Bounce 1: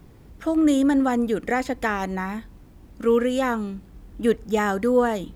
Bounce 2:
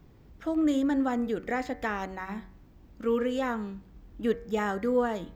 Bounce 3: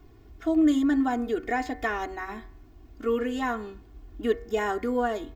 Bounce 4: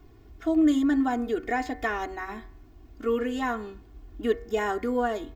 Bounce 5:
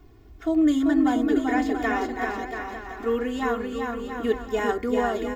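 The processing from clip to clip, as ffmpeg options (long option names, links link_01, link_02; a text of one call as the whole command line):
ffmpeg -i in.wav -af "equalizer=frequency=10000:width_type=o:width=0.52:gain=-14.5,bandreject=frequency=93.98:width_type=h:width=4,bandreject=frequency=187.96:width_type=h:width=4,bandreject=frequency=281.94:width_type=h:width=4,bandreject=frequency=375.92:width_type=h:width=4,bandreject=frequency=469.9:width_type=h:width=4,bandreject=frequency=563.88:width_type=h:width=4,bandreject=frequency=657.86:width_type=h:width=4,bandreject=frequency=751.84:width_type=h:width=4,bandreject=frequency=845.82:width_type=h:width=4,bandreject=frequency=939.8:width_type=h:width=4,bandreject=frequency=1033.78:width_type=h:width=4,bandreject=frequency=1127.76:width_type=h:width=4,bandreject=frequency=1221.74:width_type=h:width=4,bandreject=frequency=1315.72:width_type=h:width=4,bandreject=frequency=1409.7:width_type=h:width=4,bandreject=frequency=1503.68:width_type=h:width=4,bandreject=frequency=1597.66:width_type=h:width=4,bandreject=frequency=1691.64:width_type=h:width=4,bandreject=frequency=1785.62:width_type=h:width=4,bandreject=frequency=1879.6:width_type=h:width=4,bandreject=frequency=1973.58:width_type=h:width=4,bandreject=frequency=2067.56:width_type=h:width=4,bandreject=frequency=2161.54:width_type=h:width=4,bandreject=frequency=2255.52:width_type=h:width=4,bandreject=frequency=2349.5:width_type=h:width=4,bandreject=frequency=2443.48:width_type=h:width=4,volume=-6.5dB" out.wav
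ffmpeg -i in.wav -af "aecho=1:1:2.8:0.94" out.wav
ffmpeg -i in.wav -af anull out.wav
ffmpeg -i in.wav -af "aecho=1:1:390|682.5|901.9|1066|1190:0.631|0.398|0.251|0.158|0.1,volume=1dB" out.wav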